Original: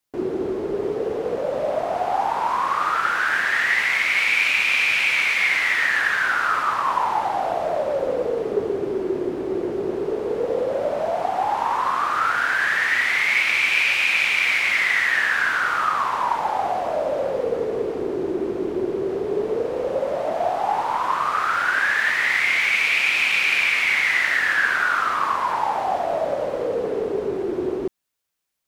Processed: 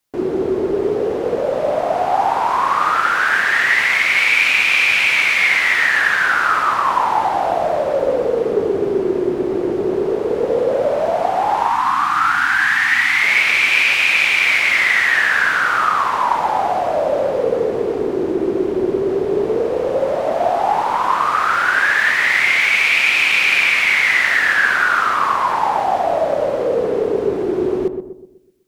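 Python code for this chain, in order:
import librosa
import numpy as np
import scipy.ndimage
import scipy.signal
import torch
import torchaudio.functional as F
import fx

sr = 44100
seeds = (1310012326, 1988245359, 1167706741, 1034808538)

y = fx.echo_filtered(x, sr, ms=125, feedback_pct=47, hz=860.0, wet_db=-6.0)
y = fx.spec_box(y, sr, start_s=11.68, length_s=1.54, low_hz=340.0, high_hz=720.0, gain_db=-18)
y = y * librosa.db_to_amplitude(5.0)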